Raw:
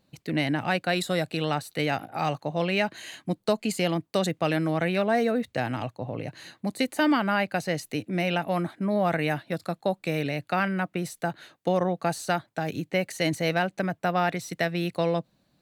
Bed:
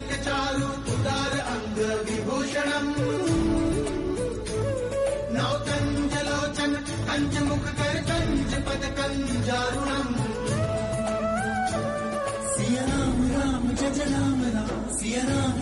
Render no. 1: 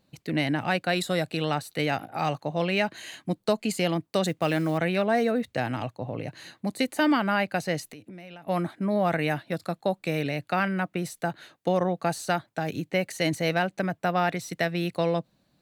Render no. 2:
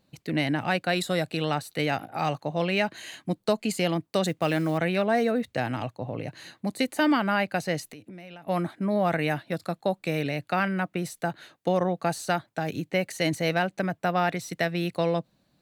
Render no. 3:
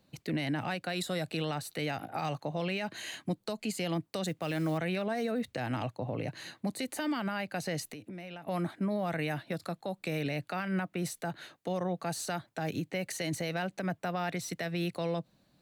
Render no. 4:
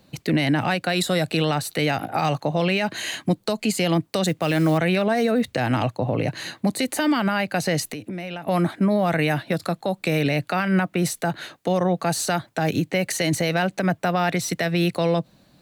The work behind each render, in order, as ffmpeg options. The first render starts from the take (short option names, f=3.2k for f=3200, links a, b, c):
-filter_complex "[0:a]asettb=1/sr,asplit=3[a][b][c];[a]atrim=end=4.264[d];[b]atrim=start=4.26:end=4.78,asetpts=PTS-STARTPTS,afade=t=in:d=0.004:c=qsin,afade=t=out:st=0.516:d=0.004:c=qsin,acrusher=bits=7:mode=log:mix=0:aa=0.000001[e];[c]atrim=start=4.776[f];[d][e]acrossfade=d=0.004:c1=hsin:c2=qsin[g];[g][f]acrossfade=d=0.004:c1=qsin:c2=hsin,asplit=3[h][i][j];[h]afade=t=out:st=7.86:d=0.02[k];[i]acompressor=threshold=-40dB:ratio=10:attack=3.2:release=140:knee=1:detection=peak,afade=t=in:st=7.86:d=0.02,afade=t=out:st=8.47:d=0.02[l];[j]afade=t=in:st=8.47:d=0.02[m];[k][l][m]amix=inputs=3:normalize=0"
-af anull
-filter_complex "[0:a]acrossover=split=160|3000[a][b][c];[b]acompressor=threshold=-27dB:ratio=2.5[d];[a][d][c]amix=inputs=3:normalize=0,alimiter=level_in=0.5dB:limit=-24dB:level=0:latency=1:release=116,volume=-0.5dB"
-af "volume=12dB"